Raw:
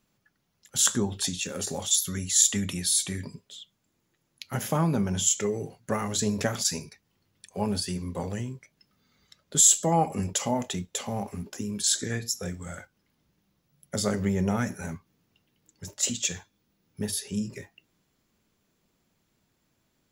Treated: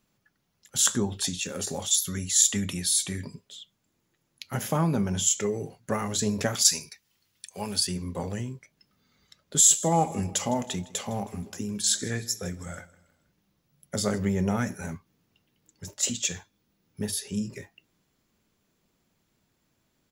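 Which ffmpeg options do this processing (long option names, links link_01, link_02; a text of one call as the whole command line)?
ffmpeg -i in.wav -filter_complex "[0:a]asettb=1/sr,asplit=3[link_01][link_02][link_03];[link_01]atrim=end=6.554[link_04];[link_02]atrim=start=6.55:end=7.87,asetpts=PTS-STARTPTS,afade=type=in:duration=0.004:curve=qsin,afade=type=out:start_time=1.316:duration=0.004:curve=qsin,tiltshelf=frequency=1400:gain=-7.5[link_05];[link_03]atrim=start=7.866[link_06];[link_04][link_05]acrossfade=duration=0.004:curve1=hsin:curve2=qsin[link_07];[link_07][link_06]acrossfade=duration=0.004:curve1=qsin:curve2=hsin,asplit=3[link_08][link_09][link_10];[link_08]afade=type=out:start_time=9.56:duration=0.02[link_11];[link_09]aecho=1:1:159|318|477:0.1|0.043|0.0185,afade=type=in:start_time=9.56:duration=0.02,afade=type=out:start_time=14.17:duration=0.02[link_12];[link_10]afade=type=in:start_time=14.17:duration=0.02[link_13];[link_11][link_12][link_13]amix=inputs=3:normalize=0" out.wav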